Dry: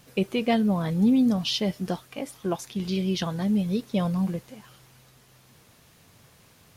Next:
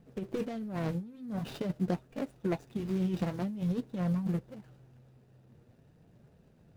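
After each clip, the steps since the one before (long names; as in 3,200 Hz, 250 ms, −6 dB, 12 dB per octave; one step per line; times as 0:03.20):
running median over 41 samples
compressor whose output falls as the input rises −27 dBFS, ratio −0.5
flanger 0.47 Hz, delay 4.3 ms, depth 5.7 ms, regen −50%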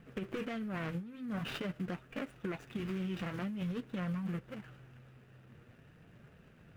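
flat-topped bell 1,900 Hz +10 dB
brickwall limiter −27 dBFS, peak gain reduction 10.5 dB
downward compressor 2.5 to 1, threshold −38 dBFS, peak gain reduction 6 dB
level +1.5 dB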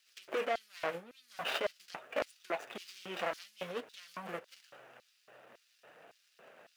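auto-filter high-pass square 1.8 Hz 620–4,700 Hz
level +5.5 dB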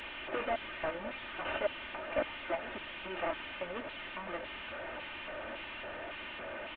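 linear delta modulator 16 kbit/s, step −37.5 dBFS
comb filter 3.3 ms, depth 58%
backwards echo 1,117 ms −11 dB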